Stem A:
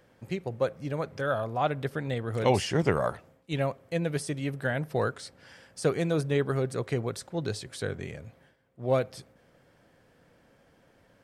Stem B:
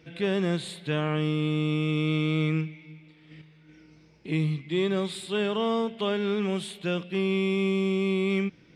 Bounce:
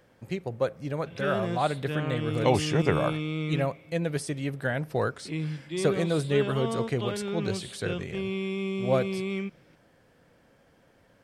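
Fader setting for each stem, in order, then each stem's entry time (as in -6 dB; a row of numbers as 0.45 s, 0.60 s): +0.5 dB, -5.5 dB; 0.00 s, 1.00 s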